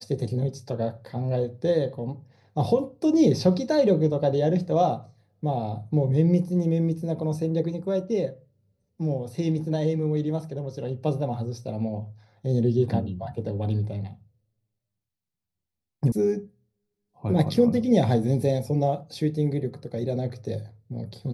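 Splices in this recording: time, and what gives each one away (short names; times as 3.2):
16.12 sound cut off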